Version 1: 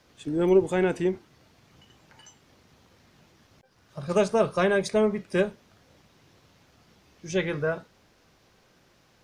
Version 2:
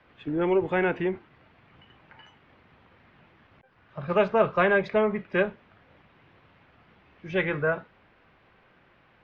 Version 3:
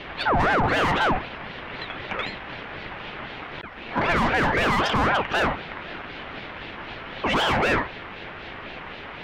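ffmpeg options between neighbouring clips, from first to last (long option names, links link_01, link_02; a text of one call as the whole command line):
ffmpeg -i in.wav -filter_complex "[0:a]lowpass=frequency=2700:width=0.5412,lowpass=frequency=2700:width=1.3066,acrossover=split=440|760[link_01][link_02][link_03];[link_01]alimiter=limit=-23.5dB:level=0:latency=1[link_04];[link_03]acontrast=28[link_05];[link_04][link_02][link_05]amix=inputs=3:normalize=0" out.wav
ffmpeg -i in.wav -filter_complex "[0:a]asplit=2[link_01][link_02];[link_02]highpass=frequency=720:poles=1,volume=33dB,asoftclip=type=tanh:threshold=-9dB[link_03];[link_01][link_03]amix=inputs=2:normalize=0,lowpass=frequency=1600:poles=1,volume=-6dB,alimiter=limit=-18dB:level=0:latency=1:release=18,aeval=exprs='val(0)*sin(2*PI*790*n/s+790*0.55/3.9*sin(2*PI*3.9*n/s))':channel_layout=same,volume=4dB" out.wav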